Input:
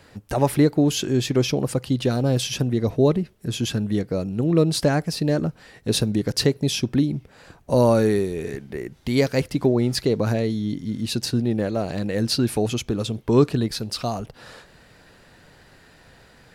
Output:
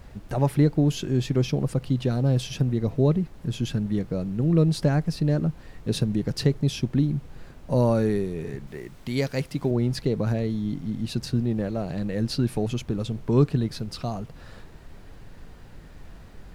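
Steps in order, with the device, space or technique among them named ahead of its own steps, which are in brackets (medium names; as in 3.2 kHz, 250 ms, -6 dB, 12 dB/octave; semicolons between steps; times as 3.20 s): car interior (peaking EQ 150 Hz +8 dB 0.97 oct; treble shelf 4.7 kHz -6 dB; brown noise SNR 17 dB); 8.67–9.71 s: tilt EQ +1.5 dB/octave; trim -6 dB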